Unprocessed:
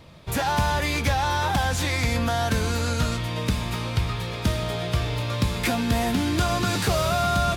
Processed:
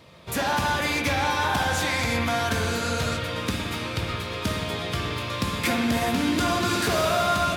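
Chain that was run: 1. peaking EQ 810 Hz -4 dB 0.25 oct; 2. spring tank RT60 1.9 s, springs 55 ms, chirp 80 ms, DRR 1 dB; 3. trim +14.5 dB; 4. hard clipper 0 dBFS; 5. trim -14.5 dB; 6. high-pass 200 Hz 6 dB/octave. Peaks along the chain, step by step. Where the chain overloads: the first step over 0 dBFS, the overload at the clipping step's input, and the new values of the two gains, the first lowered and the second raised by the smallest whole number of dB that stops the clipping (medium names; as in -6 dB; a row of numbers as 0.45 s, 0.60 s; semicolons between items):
-11.5 dBFS, -8.5 dBFS, +6.0 dBFS, 0.0 dBFS, -14.5 dBFS, -11.5 dBFS; step 3, 6.0 dB; step 3 +8.5 dB, step 5 -8.5 dB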